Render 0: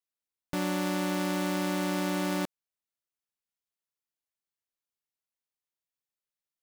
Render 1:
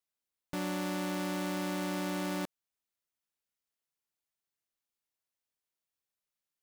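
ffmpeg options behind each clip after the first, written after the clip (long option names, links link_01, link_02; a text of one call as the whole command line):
ffmpeg -i in.wav -af "alimiter=level_in=5dB:limit=-24dB:level=0:latency=1:release=22,volume=-5dB,volume=1dB" out.wav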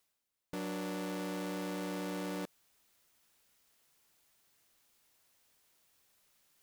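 ffmpeg -i in.wav -af "asoftclip=type=tanh:threshold=-40dB,areverse,acompressor=mode=upward:threshold=-60dB:ratio=2.5,areverse,volume=3.5dB" out.wav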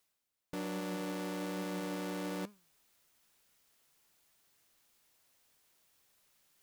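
ffmpeg -i in.wav -af "flanger=delay=4.7:depth=3.5:regen=90:speed=1.2:shape=triangular,volume=4.5dB" out.wav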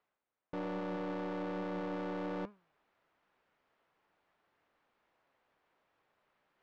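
ffmpeg -i in.wav -filter_complex "[0:a]asplit=2[link_01][link_02];[link_02]highpass=frequency=720:poles=1,volume=13dB,asoftclip=type=tanh:threshold=-33dB[link_03];[link_01][link_03]amix=inputs=2:normalize=0,lowpass=frequency=2600:poles=1,volume=-6dB,adynamicsmooth=sensitivity=4.5:basefreq=1600,volume=1.5dB" out.wav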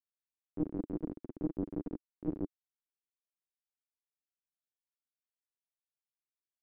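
ffmpeg -i in.wav -af "aresample=16000,acrusher=bits=3:dc=4:mix=0:aa=0.000001,aresample=44100,lowpass=frequency=310:width_type=q:width=3.5,volume=8dB" out.wav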